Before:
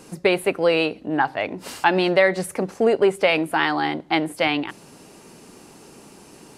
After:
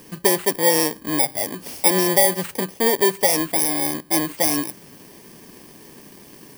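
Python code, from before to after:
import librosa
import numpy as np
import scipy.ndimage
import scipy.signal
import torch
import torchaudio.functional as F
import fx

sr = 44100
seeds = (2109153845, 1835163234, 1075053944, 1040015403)

y = fx.bit_reversed(x, sr, seeds[0], block=32)
y = fx.rider(y, sr, range_db=10, speed_s=2.0)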